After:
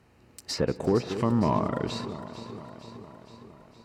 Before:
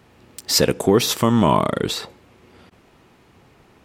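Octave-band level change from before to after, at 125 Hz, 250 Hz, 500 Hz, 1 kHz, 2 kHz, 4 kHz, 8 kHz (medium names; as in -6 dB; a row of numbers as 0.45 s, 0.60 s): -6.0 dB, -7.5 dB, -8.5 dB, -9.0 dB, -11.5 dB, -15.0 dB, -18.5 dB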